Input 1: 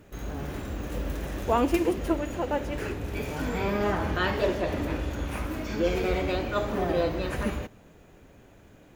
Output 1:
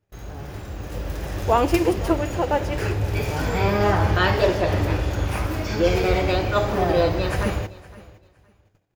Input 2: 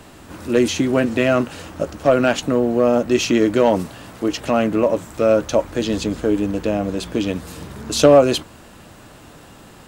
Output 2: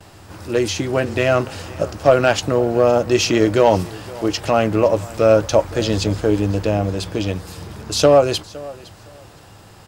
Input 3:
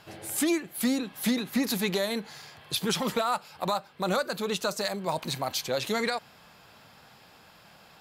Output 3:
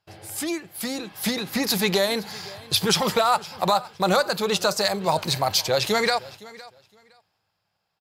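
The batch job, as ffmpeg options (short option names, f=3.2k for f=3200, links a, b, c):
-filter_complex "[0:a]agate=range=-23dB:threshold=-50dB:ratio=16:detection=peak,dynaudnorm=f=220:g=11:m=8.5dB,aeval=exprs='0.944*(cos(1*acos(clip(val(0)/0.944,-1,1)))-cos(1*PI/2))+0.0237*(cos(3*acos(clip(val(0)/0.944,-1,1)))-cos(3*PI/2))':c=same,equalizer=f=100:t=o:w=0.33:g=11,equalizer=f=250:t=o:w=0.33:g=-9,equalizer=f=800:t=o:w=0.33:g=3,equalizer=f=5k:t=o:w=0.33:g=6,asplit=2[a][b];[b]aecho=0:1:513|1026:0.0944|0.0189[c];[a][c]amix=inputs=2:normalize=0,volume=-1dB"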